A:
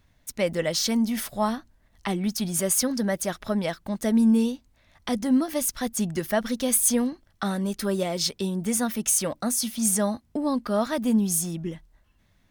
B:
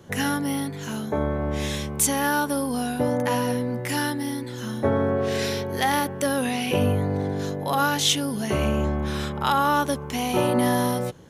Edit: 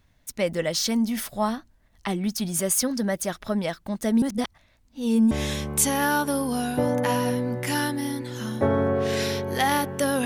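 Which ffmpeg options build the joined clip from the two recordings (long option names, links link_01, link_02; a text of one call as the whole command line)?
ffmpeg -i cue0.wav -i cue1.wav -filter_complex "[0:a]apad=whole_dur=10.25,atrim=end=10.25,asplit=2[link_01][link_02];[link_01]atrim=end=4.222[link_03];[link_02]atrim=start=4.218:end=5.312,asetpts=PTS-STARTPTS,areverse[link_04];[1:a]atrim=start=1.528:end=6.47[link_05];[link_03][link_04]acrossfade=duration=0.004:curve1=hsin:curve2=hsin[link_06];[link_06][link_05]acrossfade=duration=0.004:curve1=hsin:curve2=hsin" out.wav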